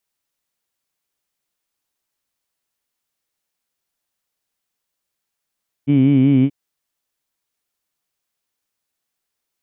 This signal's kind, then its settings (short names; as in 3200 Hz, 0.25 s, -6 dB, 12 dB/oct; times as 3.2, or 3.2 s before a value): formant-synthesis vowel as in heed, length 0.63 s, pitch 138 Hz, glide -0.5 st